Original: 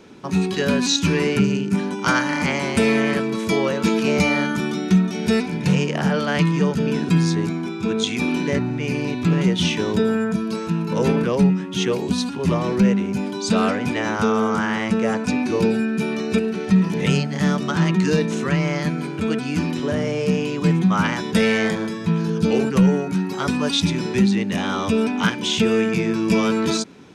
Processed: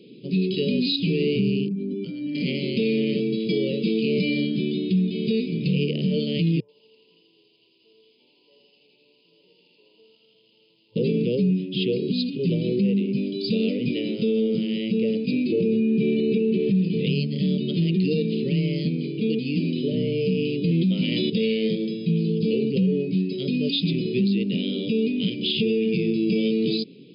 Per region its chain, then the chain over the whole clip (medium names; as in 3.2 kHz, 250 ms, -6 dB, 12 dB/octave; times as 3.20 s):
1.68–2.35 s: spectral contrast enhancement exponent 1.6 + compression 10:1, threshold -23 dBFS
6.60–10.96 s: Butterworth band-pass 920 Hz, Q 4.5 + bit-crushed delay 82 ms, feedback 80%, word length 9-bit, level -3 dB
15.52–16.75 s: low-pass 2.6 kHz + level flattener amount 50%
20.71–21.30 s: high-pass 230 Hz 6 dB/octave + band-stop 430 Hz, Q 6.5 + level flattener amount 100%
whole clip: elliptic band-stop 470–2700 Hz, stop band 40 dB; FFT band-pass 110–5100 Hz; peak limiter -14.5 dBFS